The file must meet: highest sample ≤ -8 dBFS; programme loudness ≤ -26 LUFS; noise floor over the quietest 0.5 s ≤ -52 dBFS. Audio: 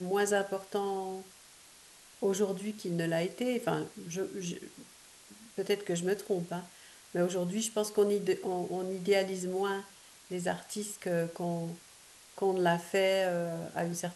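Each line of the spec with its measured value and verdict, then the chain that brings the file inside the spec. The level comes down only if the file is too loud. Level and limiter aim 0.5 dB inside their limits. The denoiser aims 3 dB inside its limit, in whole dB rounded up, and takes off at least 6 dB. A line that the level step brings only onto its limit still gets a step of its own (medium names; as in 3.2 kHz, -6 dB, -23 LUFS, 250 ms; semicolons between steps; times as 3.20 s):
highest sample -15.5 dBFS: pass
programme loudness -33.0 LUFS: pass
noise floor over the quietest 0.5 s -56 dBFS: pass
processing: none needed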